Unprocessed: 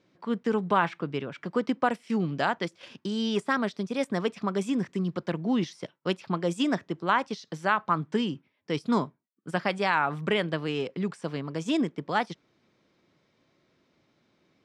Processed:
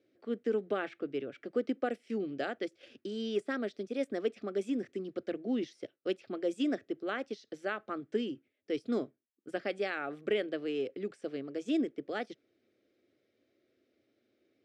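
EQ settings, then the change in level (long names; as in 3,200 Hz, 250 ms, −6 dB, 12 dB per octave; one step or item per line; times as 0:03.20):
high-pass filter 110 Hz
high-shelf EQ 2,700 Hz −11.5 dB
phaser with its sweep stopped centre 400 Hz, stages 4
−2.0 dB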